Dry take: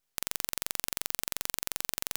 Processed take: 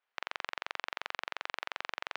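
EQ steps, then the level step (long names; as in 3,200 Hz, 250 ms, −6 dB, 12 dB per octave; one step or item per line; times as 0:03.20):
band-pass filter 760–2,400 Hz
high-frequency loss of the air 120 metres
+7.0 dB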